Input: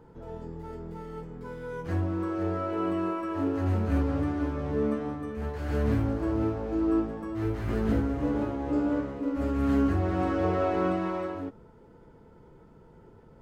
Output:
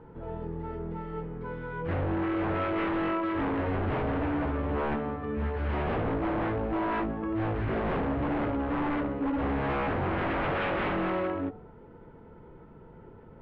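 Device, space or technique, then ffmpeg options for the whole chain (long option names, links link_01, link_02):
synthesiser wavefolder: -af "bandreject=frequency=49.3:width_type=h:width=4,bandreject=frequency=98.6:width_type=h:width=4,bandreject=frequency=147.9:width_type=h:width=4,bandreject=frequency=197.2:width_type=h:width=4,bandreject=frequency=246.5:width_type=h:width=4,bandreject=frequency=295.8:width_type=h:width=4,bandreject=frequency=345.1:width_type=h:width=4,bandreject=frequency=394.4:width_type=h:width=4,bandreject=frequency=443.7:width_type=h:width=4,bandreject=frequency=493:width_type=h:width=4,bandreject=frequency=542.3:width_type=h:width=4,bandreject=frequency=591.6:width_type=h:width=4,bandreject=frequency=640.9:width_type=h:width=4,bandreject=frequency=690.2:width_type=h:width=4,bandreject=frequency=739.5:width_type=h:width=4,aeval=exprs='0.0398*(abs(mod(val(0)/0.0398+3,4)-2)-1)':channel_layout=same,lowpass=frequency=3000:width=0.5412,lowpass=frequency=3000:width=1.3066,volume=4dB"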